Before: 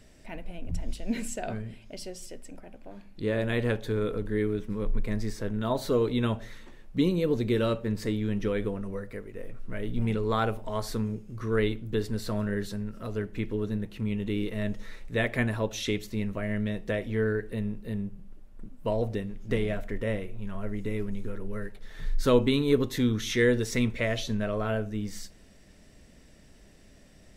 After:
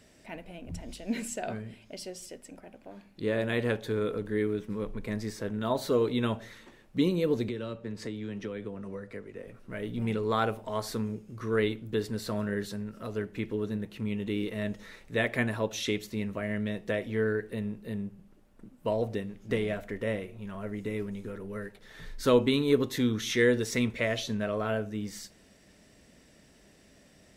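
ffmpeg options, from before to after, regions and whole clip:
-filter_complex "[0:a]asettb=1/sr,asplit=3[a][b][c];[a]atrim=end=7.484[d];[b]atrim=start=7.48:end=9.48,asetpts=PTS-STARTPTS,afade=t=in:d=0.004:c=qsin,afade=t=out:st=1.996:d=0.004:c=qsin,lowpass=8.2k,acrossover=split=87|260[e][f][g];[e]acompressor=threshold=-43dB:ratio=4[h];[f]acompressor=threshold=-38dB:ratio=4[i];[g]acompressor=threshold=-38dB:ratio=4[j];[h][i][j]amix=inputs=3:normalize=0[k];[c]atrim=start=9.476[l];[d][k]acrossfade=d=0.004:c1=hsin:c2=qsin[m];[m][l]acrossfade=d=0.004:c1=qsin:c2=hsin,highpass=f=73:p=1,lowshelf=f=120:g=-5.5"

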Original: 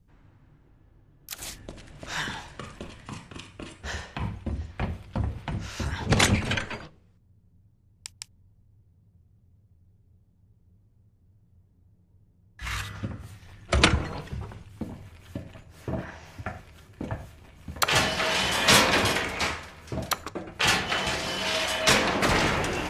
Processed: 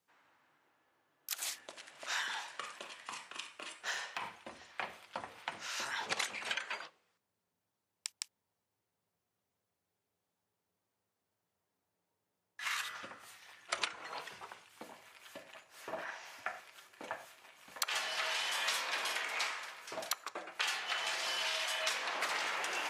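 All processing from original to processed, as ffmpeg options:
-filter_complex "[0:a]asettb=1/sr,asplit=3[a][b][c];[a]atrim=end=3.504[d];[b]atrim=start=3.5:end=4.22,asetpts=PTS-STARTPTS,afade=t=in:d=0.004:c=qsin,afade=t=out:st=0.716:d=0.004:c=qsin,highpass=40,asoftclip=type=hard:threshold=-27.5dB[e];[c]atrim=start=4.216[f];[d][e]acrossfade=d=0.004:c1=hsin:c2=qsin[g];[g][f]acrossfade=d=0.004:c1=qsin:c2=hsin,highpass=830,acompressor=threshold=-33dB:ratio=10"

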